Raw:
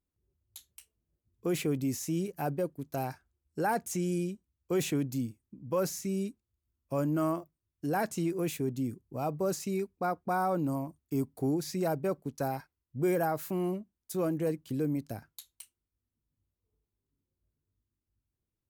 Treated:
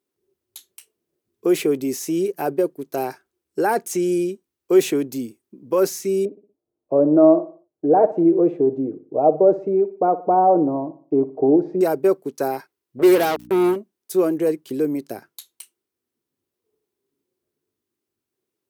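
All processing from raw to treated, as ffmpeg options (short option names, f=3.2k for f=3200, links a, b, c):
-filter_complex "[0:a]asettb=1/sr,asplit=3[a][b][c];[a]atrim=end=6.254[d];[b]atrim=start=6.25:end=11.81,asetpts=PTS-STARTPTS,afade=t=in:d=0.004:c=qsin,afade=t=out:st=5.556:d=0.004:c=qsin,lowpass=f=650:t=q:w=2.6,aecho=1:1:6.5:0.47,atrim=end_sample=245196,aecho=1:1:60|120|180|240:0.168|0.0722|0.031|0.0133,atrim=end_sample=245196[e];[c]atrim=start=11.806[f];[d][e]acrossfade=d=0.004:c1=hsin:c2=qsin[g];[g][f]acrossfade=d=0.004:c1=qsin:c2=hsin,asettb=1/sr,asplit=3[h][i][j];[h]atrim=end=12.994[k];[i]atrim=start=12.99:end=13.76,asetpts=PTS-STARTPTS,afade=t=in:d=0.004:c=qsin,afade=t=out:st=0.766:d=0.004:c=qsin,acrusher=bits=4:mix=0:aa=0.5,aeval=exprs='val(0)+0.0112*(sin(2*PI*60*n/s)+sin(2*PI*2*60*n/s)/2+sin(2*PI*3*60*n/s)/3+sin(2*PI*4*60*n/s)/4+sin(2*PI*5*60*n/s)/5)':c=same[l];[j]atrim=start=13.756[m];[k][l]acrossfade=d=0.004:c1=hsin:c2=qsin[n];[n][m]acrossfade=d=0.004:c1=qsin:c2=hsin,highpass=280,equalizer=f=390:t=o:w=0.46:g=10,bandreject=f=7.1k:w=25,volume=8.5dB"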